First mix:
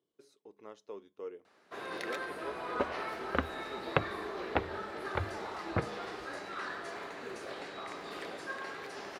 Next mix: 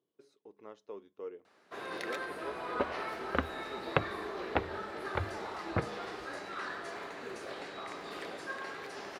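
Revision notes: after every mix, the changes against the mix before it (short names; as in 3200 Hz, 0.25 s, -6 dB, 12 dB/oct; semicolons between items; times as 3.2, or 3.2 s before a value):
speech: add high shelf 5000 Hz -10 dB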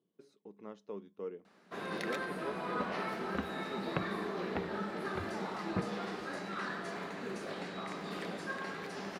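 second sound -10.0 dB; master: add bell 190 Hz +15 dB 0.65 oct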